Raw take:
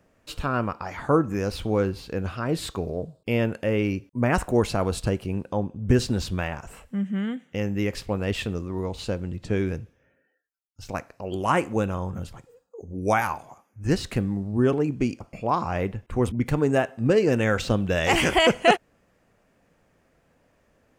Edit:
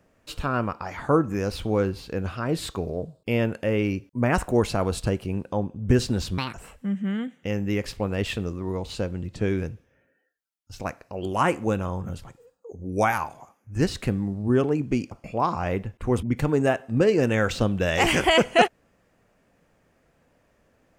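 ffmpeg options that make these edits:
-filter_complex "[0:a]asplit=3[s0][s1][s2];[s0]atrim=end=6.384[s3];[s1]atrim=start=6.38:end=6.63,asetpts=PTS-STARTPTS,asetrate=69237,aresample=44100,atrim=end_sample=7022,asetpts=PTS-STARTPTS[s4];[s2]atrim=start=6.626[s5];[s3][s4]acrossfade=d=0.004:c1=hsin:c2=hsin[s6];[s6][s5]acrossfade=d=0.004:c1=hsin:c2=hsin"

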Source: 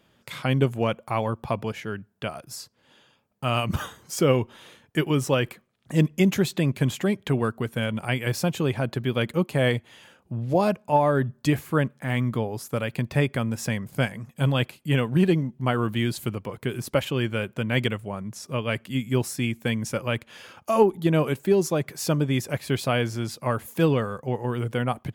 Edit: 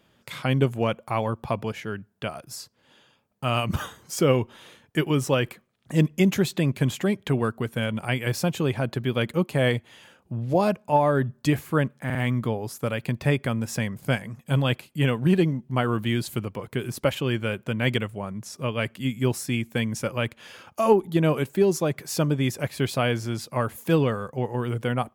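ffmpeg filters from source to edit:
-filter_complex "[0:a]asplit=3[s0][s1][s2];[s0]atrim=end=12.102[s3];[s1]atrim=start=12.048:end=12.102[s4];[s2]atrim=start=12.048[s5];[s3][s4]acrossfade=d=0.004:c1=hsin:c2=hsin[s6];[s6][s5]acrossfade=d=0.004:c1=hsin:c2=hsin"

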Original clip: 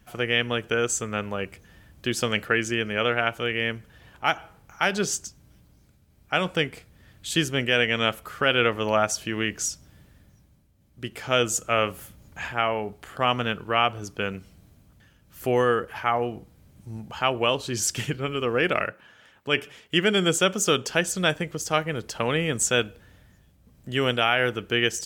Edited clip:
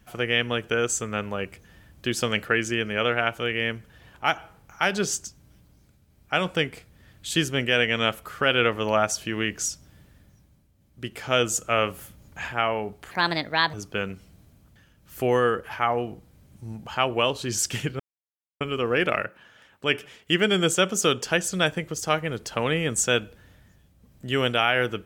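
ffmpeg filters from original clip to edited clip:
-filter_complex "[0:a]asplit=4[s0][s1][s2][s3];[s0]atrim=end=13.114[s4];[s1]atrim=start=13.11:end=13.98,asetpts=PTS-STARTPTS,asetrate=61299,aresample=44100,atrim=end_sample=27602,asetpts=PTS-STARTPTS[s5];[s2]atrim=start=13.976:end=18.24,asetpts=PTS-STARTPTS,afade=t=out:st=4.26:d=0.004:c=hsin,apad=pad_dur=0.61[s6];[s3]atrim=start=18.24,asetpts=PTS-STARTPTS,afade=t=in:d=0.004:c=hsin[s7];[s4][s5]acrossfade=d=0.004:c1=hsin:c2=hsin[s8];[s6][s7]concat=n=2:v=0:a=1[s9];[s8][s9]acrossfade=d=0.004:c1=hsin:c2=hsin"

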